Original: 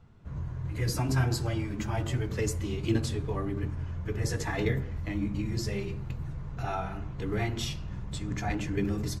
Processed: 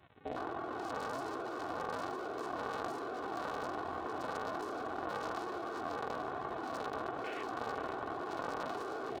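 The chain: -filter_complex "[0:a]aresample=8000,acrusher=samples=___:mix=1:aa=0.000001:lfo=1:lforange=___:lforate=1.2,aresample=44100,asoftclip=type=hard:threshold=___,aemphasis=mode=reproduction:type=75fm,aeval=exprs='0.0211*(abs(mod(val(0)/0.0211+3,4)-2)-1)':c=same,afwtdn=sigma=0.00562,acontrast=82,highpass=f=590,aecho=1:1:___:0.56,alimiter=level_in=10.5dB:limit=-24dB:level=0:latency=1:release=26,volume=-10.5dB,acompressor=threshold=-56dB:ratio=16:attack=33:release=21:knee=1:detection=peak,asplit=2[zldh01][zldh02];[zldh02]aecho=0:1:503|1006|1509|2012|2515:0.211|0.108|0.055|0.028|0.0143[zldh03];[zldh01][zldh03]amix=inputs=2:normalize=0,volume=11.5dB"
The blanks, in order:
16, 16, -25dB, 2.7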